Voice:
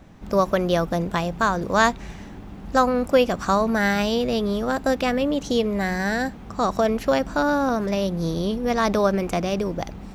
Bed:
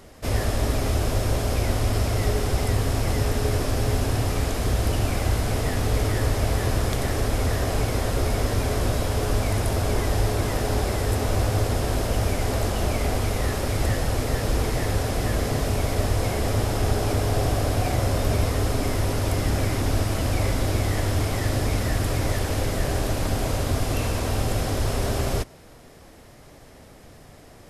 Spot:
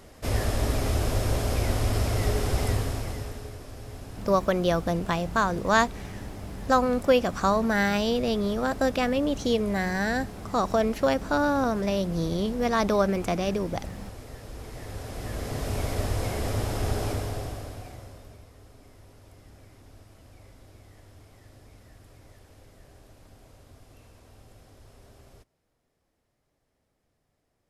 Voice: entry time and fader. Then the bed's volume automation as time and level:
3.95 s, −3.0 dB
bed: 0:02.70 −2.5 dB
0:03.57 −18 dB
0:14.52 −18 dB
0:15.79 −5 dB
0:17.06 −5 dB
0:18.46 −28.5 dB

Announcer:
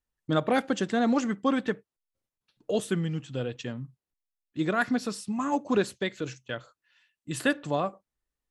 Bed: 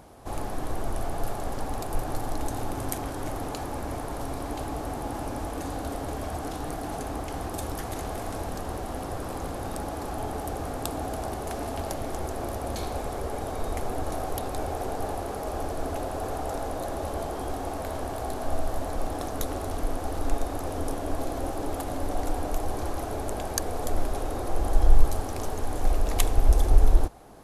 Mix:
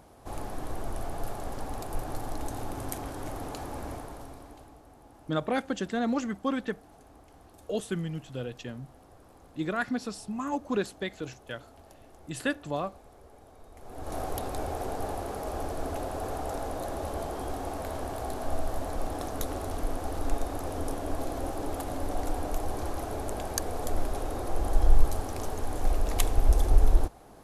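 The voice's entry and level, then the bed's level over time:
5.00 s, −4.0 dB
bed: 0:03.88 −4.5 dB
0:04.83 −21.5 dB
0:13.73 −21.5 dB
0:14.17 −2.5 dB

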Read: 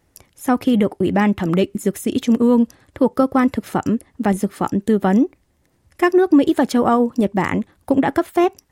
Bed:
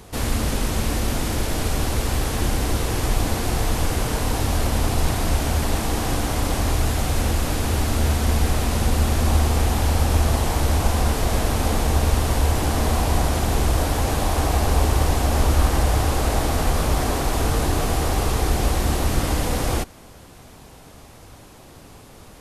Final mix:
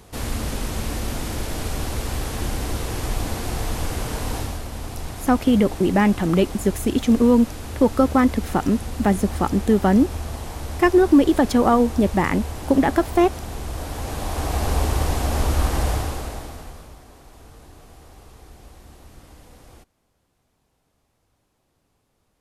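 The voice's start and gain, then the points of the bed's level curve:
4.80 s, −1.0 dB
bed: 0:04.38 −4 dB
0:04.63 −11 dB
0:13.63 −11 dB
0:14.67 −2.5 dB
0:15.90 −2.5 dB
0:17.03 −25 dB

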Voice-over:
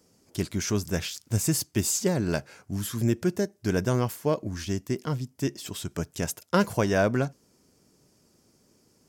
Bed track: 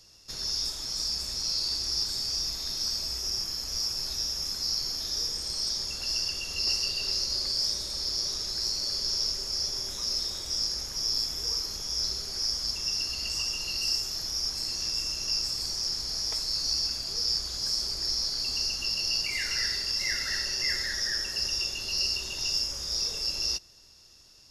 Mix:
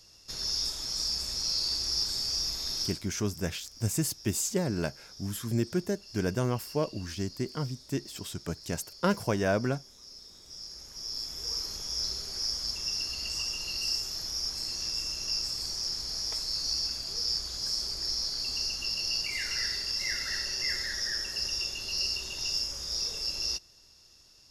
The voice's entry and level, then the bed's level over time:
2.50 s, −4.0 dB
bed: 0:02.82 −0.5 dB
0:03.05 −19 dB
0:10.22 −19 dB
0:11.62 −2.5 dB

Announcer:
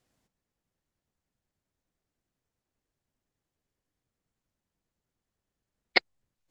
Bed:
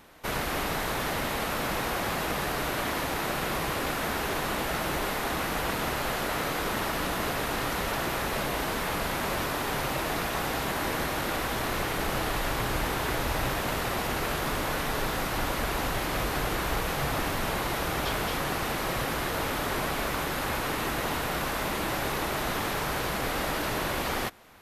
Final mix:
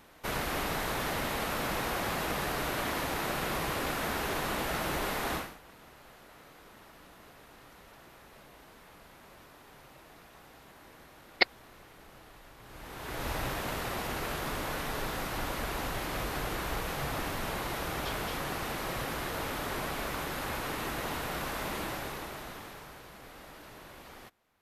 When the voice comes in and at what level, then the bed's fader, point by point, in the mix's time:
5.45 s, −1.0 dB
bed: 0:05.36 −3 dB
0:05.59 −24.5 dB
0:12.58 −24.5 dB
0:13.27 −5.5 dB
0:21.80 −5.5 dB
0:23.04 −20 dB

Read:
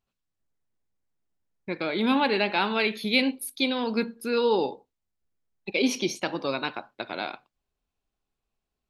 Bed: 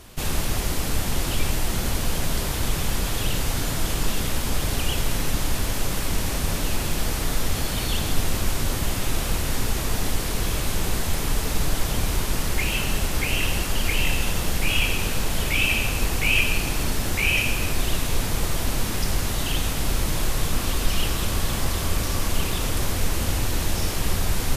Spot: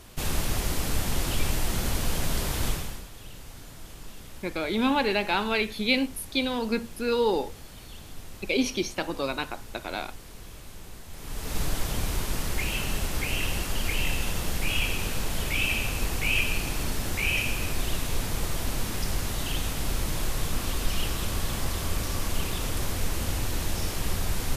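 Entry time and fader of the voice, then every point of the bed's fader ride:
2.75 s, −1.0 dB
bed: 0:02.69 −3 dB
0:03.09 −19.5 dB
0:11.08 −19.5 dB
0:11.58 −5 dB

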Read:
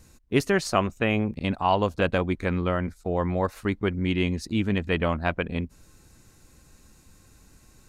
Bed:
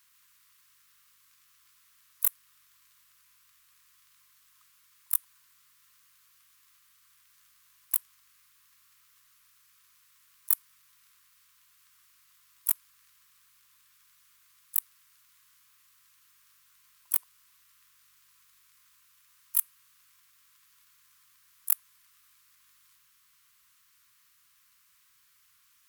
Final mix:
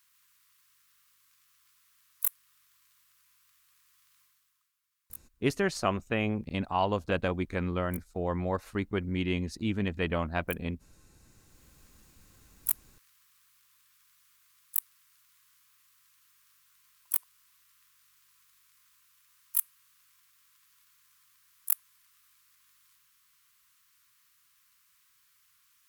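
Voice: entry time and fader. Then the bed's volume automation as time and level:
5.10 s, −5.5 dB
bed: 0:04.22 −3 dB
0:04.76 −18.5 dB
0:11.02 −18.5 dB
0:11.64 −2 dB

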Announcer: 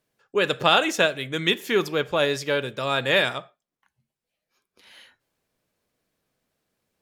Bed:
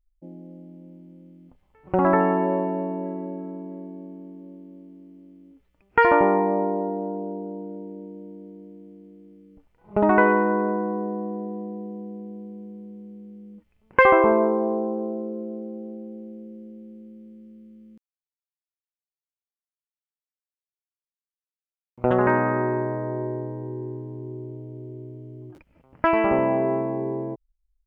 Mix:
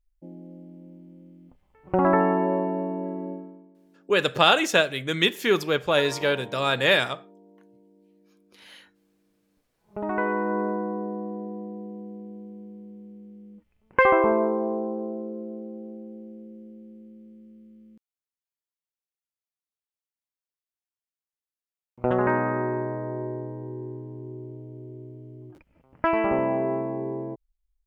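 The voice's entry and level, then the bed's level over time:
3.75 s, +0.5 dB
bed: 0:03.32 −1 dB
0:03.75 −21 dB
0:09.42 −21 dB
0:10.59 −3 dB

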